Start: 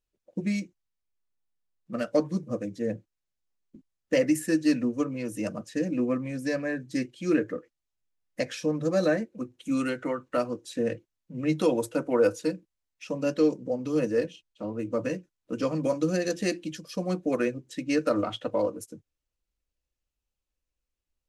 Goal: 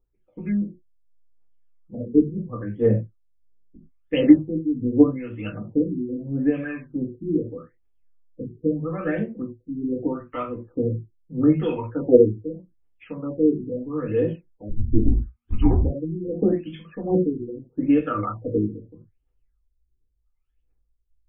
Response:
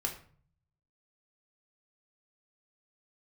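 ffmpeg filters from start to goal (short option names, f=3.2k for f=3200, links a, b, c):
-filter_complex "[0:a]asettb=1/sr,asplit=3[a][b][c];[a]atrim=end=14.694[d];[b]atrim=start=14.69:end=15.82,asetpts=PTS-STARTPTS,afade=t=in:d=0.004:c=qsin,afade=t=out:st=1.126:d=0.004:c=qsin,afreqshift=-240[e];[c]atrim=start=15.816[f];[d][e]acrossfade=d=0.004:c1=hsin:c2=qsin[g];[g][f]acrossfade=d=0.004:c1=qsin:c2=hsin,aphaser=in_gain=1:out_gain=1:delay=1:decay=0.78:speed=1.4:type=triangular[h];[1:a]atrim=start_sample=2205,afade=t=out:st=0.15:d=0.01,atrim=end_sample=7056[i];[h][i]afir=irnorm=-1:irlink=0,afftfilt=real='re*lt(b*sr/1024,430*pow(3600/430,0.5+0.5*sin(2*PI*0.79*pts/sr)))':imag='im*lt(b*sr/1024,430*pow(3600/430,0.5+0.5*sin(2*PI*0.79*pts/sr)))':win_size=1024:overlap=0.75,volume=-3dB"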